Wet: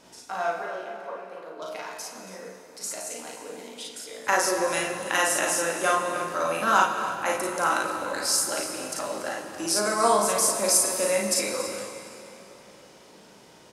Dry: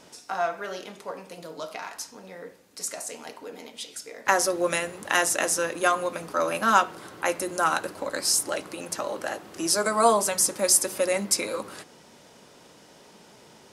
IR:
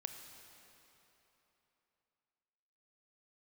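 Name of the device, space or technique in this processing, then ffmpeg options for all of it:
cave: -filter_complex "[0:a]asettb=1/sr,asplit=3[link_01][link_02][link_03];[link_01]atrim=end=0.624[link_04];[link_02]atrim=start=0.62:end=1.62,asetpts=PTS-STARTPTS,afade=type=in:duration=0.004:curve=qsin,afade=type=out:start_time=0.996:duration=0.004:curve=qsin,acrossover=split=310 2500:gain=0.2 1 0.141[link_05][link_06][link_07];[link_05][link_06][link_07]amix=inputs=3:normalize=0[link_08];[link_03]atrim=start=1.616[link_09];[link_04][link_08]acrossfade=duration=0.004:curve1=hsin:curve2=qsin[link_10];[link_10][link_09]acrossfade=duration=0.004:curve1=qsin:curve2=hsin,aecho=1:1:38|54:0.708|0.631,aecho=1:1:281:0.188[link_11];[1:a]atrim=start_sample=2205[link_12];[link_11][link_12]afir=irnorm=-1:irlink=0"

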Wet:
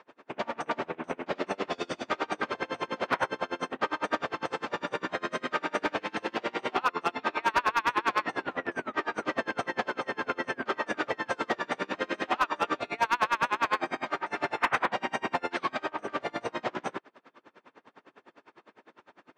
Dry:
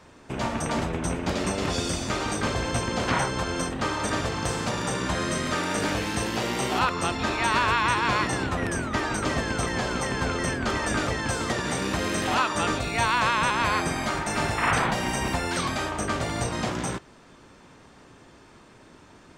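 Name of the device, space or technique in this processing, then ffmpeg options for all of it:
helicopter radio: -af "highpass=350,lowpass=2700,aeval=exprs='val(0)*pow(10,-31*(0.5-0.5*cos(2*PI*9.9*n/s))/20)':channel_layout=same,asoftclip=type=hard:threshold=-21dB,volume=4dB"

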